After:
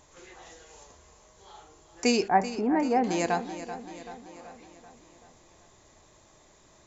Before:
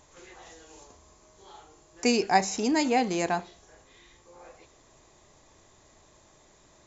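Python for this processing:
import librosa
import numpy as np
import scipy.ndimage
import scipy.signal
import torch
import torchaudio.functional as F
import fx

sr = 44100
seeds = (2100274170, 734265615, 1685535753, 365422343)

y = fx.peak_eq(x, sr, hz=320.0, db=-13.0, octaves=0.31, at=(0.56, 1.57))
y = fx.lowpass(y, sr, hz=1700.0, slope=24, at=(2.28, 3.04))
y = fx.echo_feedback(y, sr, ms=384, feedback_pct=56, wet_db=-12.5)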